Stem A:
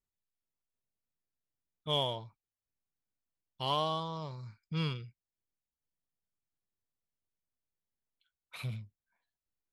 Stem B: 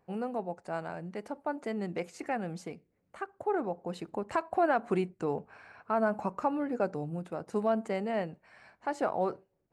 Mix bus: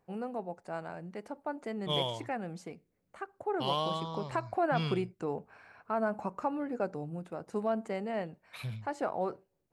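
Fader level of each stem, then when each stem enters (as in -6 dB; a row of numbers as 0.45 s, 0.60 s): -0.5 dB, -3.0 dB; 0.00 s, 0.00 s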